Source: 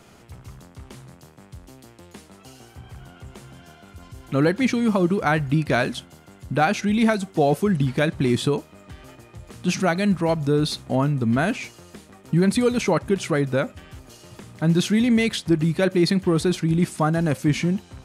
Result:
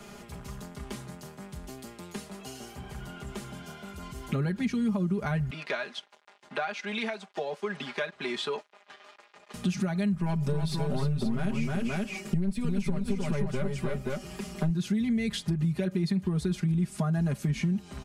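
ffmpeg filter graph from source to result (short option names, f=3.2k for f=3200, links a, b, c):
-filter_complex "[0:a]asettb=1/sr,asplit=3[a][b][c];[a]atrim=end=5.504[d];[b]atrim=start=5.5:end=9.54,asetpts=PTS-STARTPTS,afade=t=in:d=0.004:c=qsin,afade=t=out:st=4.036:d=0.004:c=qsin,aeval=exprs='sgn(val(0))*max(abs(val(0))-0.00596,0)':c=same,highpass=670,lowpass=4.5k[e];[c]atrim=start=9.536[f];[d][e]acrossfade=d=0.004:c1=hsin:c2=qsin[g];[g][f]acrossfade=d=0.004:c1=qsin:c2=hsin,asettb=1/sr,asplit=3[h][i][j];[h]atrim=end=10.154[k];[i]atrim=start=10.15:end=14.7,asetpts=PTS-STARTPTS,afade=t=in:d=0.004:c=qsin,afade=t=out:st=4.546:d=0.004:c=qsin,aecho=1:1:5.3:0.55,atrim=end_sample=200655,aeval=exprs='(tanh(3.55*val(0)+0.55)-tanh(0.55))/3.55':c=same,aecho=1:1:310|528:0.531|0.447,atrim=end_sample=200655[l];[j]atrim=start=14.696[m];[k][l]acrossfade=d=0.004:c1=hsin:c2=qsin[n];[n][m]acrossfade=d=0.004:c1=qsin:c2=hsin,acrossover=split=150[o][p];[p]acompressor=threshold=-33dB:ratio=6[q];[o][q]amix=inputs=2:normalize=0,aecho=1:1:4.9:0.84,acompressor=threshold=-25dB:ratio=6,volume=1dB"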